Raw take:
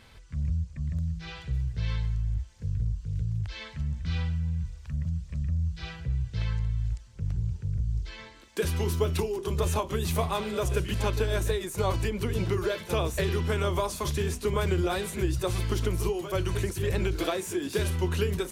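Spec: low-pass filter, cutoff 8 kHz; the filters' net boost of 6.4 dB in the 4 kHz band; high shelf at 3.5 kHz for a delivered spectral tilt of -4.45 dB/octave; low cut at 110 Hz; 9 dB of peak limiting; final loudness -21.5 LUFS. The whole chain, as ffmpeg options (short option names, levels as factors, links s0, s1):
-af "highpass=110,lowpass=8000,highshelf=f=3500:g=5,equalizer=f=4000:t=o:g=5,volume=3.98,alimiter=limit=0.299:level=0:latency=1"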